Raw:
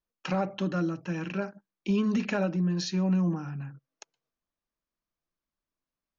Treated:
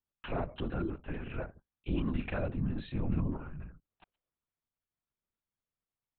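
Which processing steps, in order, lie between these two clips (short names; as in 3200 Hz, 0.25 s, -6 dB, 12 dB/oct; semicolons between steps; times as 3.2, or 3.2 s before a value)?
LPC vocoder at 8 kHz whisper; gain -6 dB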